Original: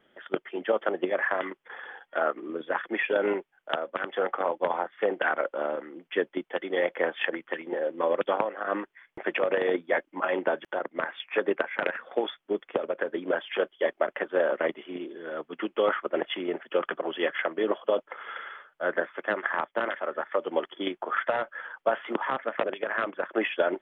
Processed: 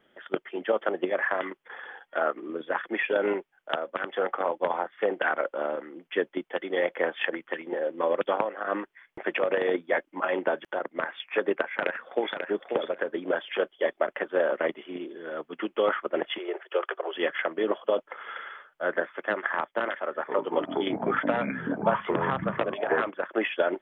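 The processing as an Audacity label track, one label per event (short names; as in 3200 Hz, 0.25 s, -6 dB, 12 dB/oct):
11.680000	12.380000	echo throw 0.54 s, feedback 15%, level -5.5 dB
16.380000	17.150000	elliptic high-pass 370 Hz
19.960000	23.090000	echoes that change speed 0.253 s, each echo -6 st, echoes 3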